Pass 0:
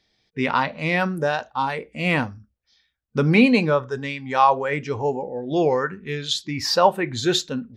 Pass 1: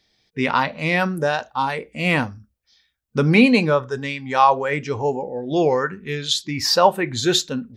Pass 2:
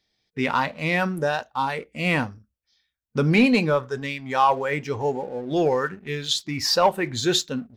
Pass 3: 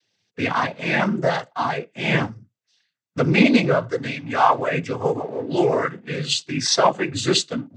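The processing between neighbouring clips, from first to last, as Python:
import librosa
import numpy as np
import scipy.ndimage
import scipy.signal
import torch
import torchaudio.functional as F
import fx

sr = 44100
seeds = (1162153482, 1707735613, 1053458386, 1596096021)

y1 = fx.high_shelf(x, sr, hz=6000.0, db=6.0)
y1 = y1 * 10.0 ** (1.5 / 20.0)
y2 = fx.leveller(y1, sr, passes=1)
y2 = y2 * 10.0 ** (-6.5 / 20.0)
y3 = fx.noise_vocoder(y2, sr, seeds[0], bands=16)
y3 = y3 * 10.0 ** (2.5 / 20.0)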